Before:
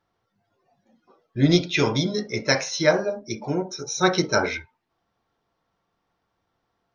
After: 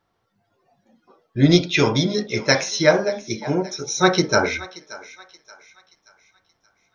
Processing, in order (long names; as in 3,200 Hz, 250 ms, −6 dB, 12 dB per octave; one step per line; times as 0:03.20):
feedback echo with a high-pass in the loop 578 ms, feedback 43%, high-pass 760 Hz, level −16.5 dB
level +3.5 dB